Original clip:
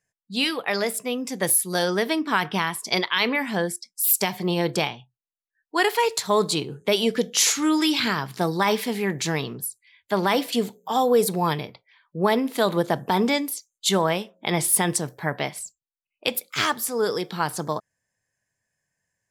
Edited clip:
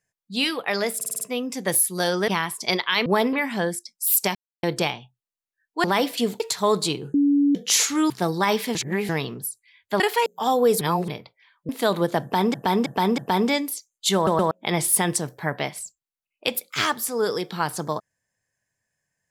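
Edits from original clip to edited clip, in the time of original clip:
0.96 stutter 0.05 s, 6 plays
2.03–2.52 cut
4.32–4.6 mute
5.81–6.07 swap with 10.19–10.75
6.81–7.22 bleep 285 Hz -15 dBFS
7.77–8.29 cut
8.94–9.28 reverse
11.3–11.57 reverse
12.18–12.45 move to 3.3
12.98–13.3 loop, 4 plays
13.95 stutter in place 0.12 s, 3 plays

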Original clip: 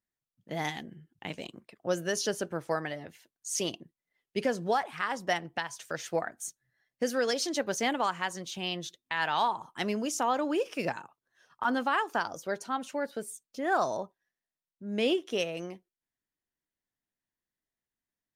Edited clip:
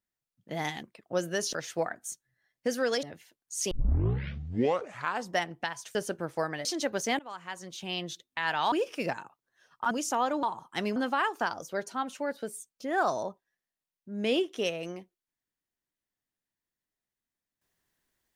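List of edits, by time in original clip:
0.83–1.57 cut
2.27–2.97 swap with 5.89–7.39
3.65 tape start 1.61 s
7.93–8.73 fade in, from -21 dB
9.46–9.99 swap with 10.51–11.7

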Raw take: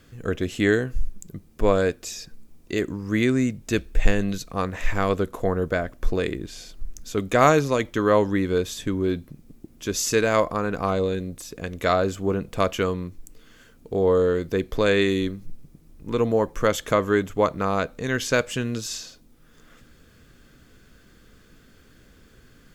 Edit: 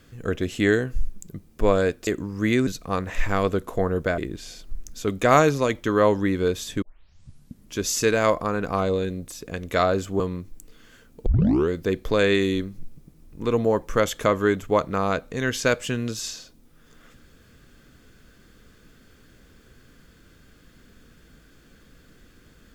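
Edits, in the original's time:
2.07–2.77 cut
3.37–4.33 cut
5.84–6.28 cut
8.92 tape start 0.94 s
12.3–12.87 cut
13.93 tape start 0.43 s

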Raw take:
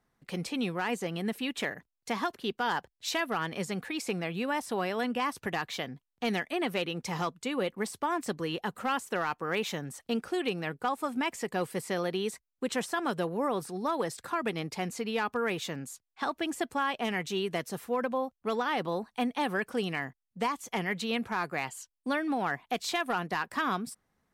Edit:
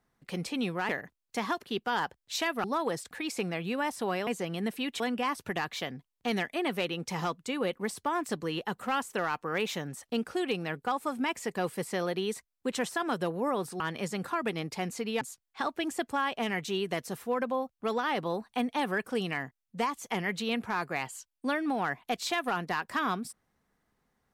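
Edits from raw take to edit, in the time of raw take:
0.89–1.62 move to 4.97
3.37–3.81 swap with 13.77–14.24
15.21–15.83 cut

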